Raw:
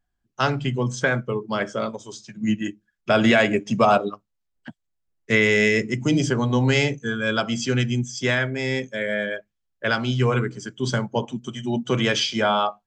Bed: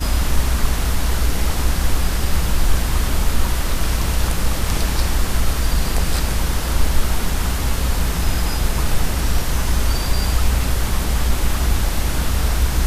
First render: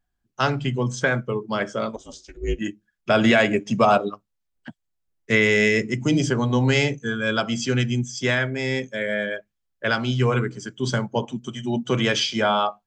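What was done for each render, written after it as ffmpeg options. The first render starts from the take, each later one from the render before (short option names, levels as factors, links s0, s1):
-filter_complex "[0:a]asettb=1/sr,asplit=3[s0][s1][s2];[s0]atrim=end=1.964[s3];[s1]atrim=start=1.96:end=2.59,asetpts=PTS-STARTPTS,afade=t=in:d=0.004:c=qsin,afade=t=out:st=0.626:d=0.004:c=qsin,aeval=exprs='val(0)*sin(2*PI*160*n/s)':c=same[s4];[s2]atrim=start=2.586[s5];[s3][s4]acrossfade=d=0.004:c1=hsin:c2=qsin[s6];[s6][s5]acrossfade=d=0.004:c1=qsin:c2=hsin"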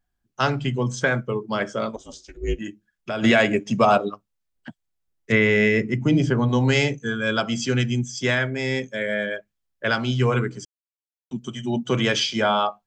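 -filter_complex "[0:a]asplit=3[s0][s1][s2];[s0]afade=t=out:st=2.59:d=0.02[s3];[s1]acompressor=threshold=0.0282:ratio=2:attack=3.2:release=140:knee=1:detection=peak,afade=t=in:st=2.59:d=0.02,afade=t=out:st=3.22:d=0.02[s4];[s2]afade=t=in:st=3.22:d=0.02[s5];[s3][s4][s5]amix=inputs=3:normalize=0,asettb=1/sr,asplit=3[s6][s7][s8];[s6]atrim=end=5.324[s9];[s7]atrim=start=5.32:end=6.49,asetpts=PTS-STARTPTS,afade=t=in:d=0.004:c=qsin,afade=t=out:st=1.166:d=0.004:c=qsin,bass=f=250:g=3,treble=f=4000:g=-13[s10];[s8]atrim=start=6.486[s11];[s9][s10]acrossfade=d=0.004:c1=hsin:c2=qsin[s12];[s12][s11]acrossfade=d=0.004:c1=qsin:c2=hsin,asplit=3[s13][s14][s15];[s13]atrim=end=10.65,asetpts=PTS-STARTPTS,afade=t=out:st=10.646:d=0.004:c=hsin[s16];[s14]atrim=start=10.65:end=11.31,asetpts=PTS-STARTPTS,volume=0[s17];[s15]atrim=start=11.31,asetpts=PTS-STARTPTS,afade=t=in:d=0.004:c=hsin[s18];[s16][s17][s18]concat=n=3:v=0:a=1"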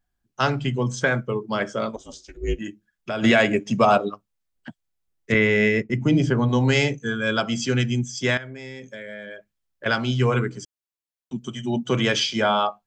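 -filter_complex "[0:a]asettb=1/sr,asplit=3[s0][s1][s2];[s0]atrim=end=5.344[s3];[s1]atrim=start=5.34:end=5.9,asetpts=PTS-STARTPTS,afade=t=in:d=0.004:c=qsin,afade=t=out:st=0.556:d=0.004:c=qsin,agate=range=0.0224:threshold=0.126:ratio=3:release=100:detection=peak[s4];[s2]atrim=start=5.896[s5];[s3][s4]acrossfade=d=0.004:c1=hsin:c2=qsin[s6];[s6][s5]acrossfade=d=0.004:c1=qsin:c2=hsin,asettb=1/sr,asplit=3[s7][s8][s9];[s7]atrim=end=8.374[s10];[s8]atrim=start=8.37:end=9.86,asetpts=PTS-STARTPTS,afade=t=in:d=0.004:c=qsin,afade=t=out:st=1.486:d=0.004:c=qsin,acompressor=threshold=0.0224:ratio=8:attack=3.2:release=140:knee=1:detection=peak[s11];[s9]atrim=start=9.856[s12];[s10][s11]acrossfade=d=0.004:c1=hsin:c2=qsin[s13];[s13][s12]acrossfade=d=0.004:c1=qsin:c2=hsin"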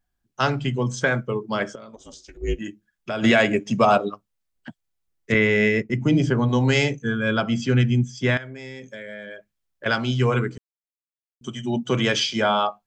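-filter_complex "[0:a]asettb=1/sr,asplit=3[s0][s1][s2];[s0]atrim=end=1.754[s3];[s1]atrim=start=1.75:end=2.42,asetpts=PTS-STARTPTS,afade=t=in:d=0.004:c=qsin,afade=t=out:st=0.666:d=0.004:c=qsin,acompressor=threshold=0.0141:ratio=12:attack=3.2:release=140:knee=1:detection=peak[s4];[s2]atrim=start=2.416[s5];[s3][s4]acrossfade=d=0.004:c1=hsin:c2=qsin[s6];[s6][s5]acrossfade=d=0.004:c1=qsin:c2=hsin,asettb=1/sr,asplit=3[s7][s8][s9];[s7]atrim=end=7.024[s10];[s8]atrim=start=7.02:end=8.37,asetpts=PTS-STARTPTS,afade=t=in:d=0.004:c=qsin,afade=t=out:st=1.346:d=0.004:c=qsin,bass=f=250:g=5,treble=f=4000:g=-10[s11];[s9]atrim=start=8.366[s12];[s10][s11]acrossfade=d=0.004:c1=hsin:c2=qsin[s13];[s13][s12]acrossfade=d=0.004:c1=qsin:c2=hsin,asplit=3[s14][s15][s16];[s14]atrim=end=10.58,asetpts=PTS-STARTPTS,afade=t=out:st=10.576:d=0.004:c=hsin[s17];[s15]atrim=start=10.58:end=11.41,asetpts=PTS-STARTPTS,volume=0[s18];[s16]atrim=start=11.41,asetpts=PTS-STARTPTS,afade=t=in:d=0.004:c=hsin[s19];[s17][s18][s19]concat=n=3:v=0:a=1"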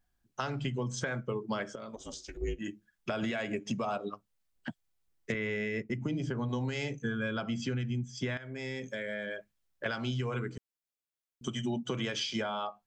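-af "alimiter=limit=0.168:level=0:latency=1:release=390,acompressor=threshold=0.0282:ratio=6"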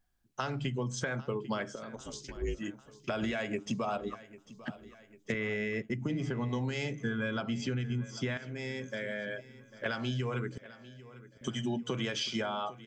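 -af "aecho=1:1:797|1594|2391|3188|3985:0.133|0.072|0.0389|0.021|0.0113"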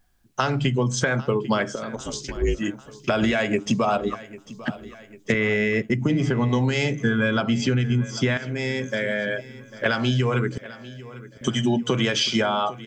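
-af "volume=3.98"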